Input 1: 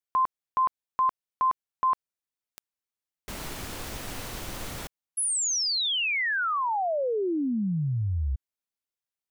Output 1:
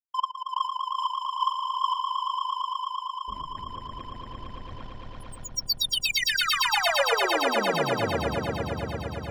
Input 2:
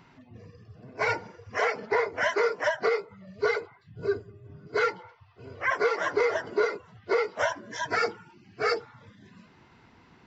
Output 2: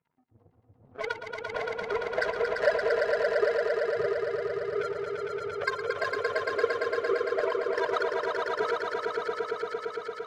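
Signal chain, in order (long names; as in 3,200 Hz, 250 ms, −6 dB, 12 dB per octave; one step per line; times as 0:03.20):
expanding power law on the bin magnitudes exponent 2.9
mains-hum notches 60/120/180/240/300/360/420/480 Hz
leveller curve on the samples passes 1
downward compressor 3 to 1, threshold −34 dBFS
auto-filter low-pass sine 8.1 Hz 540–5,300 Hz
power curve on the samples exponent 2
echo that builds up and dies away 114 ms, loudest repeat 5, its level −5 dB
one half of a high-frequency compander encoder only
level +7 dB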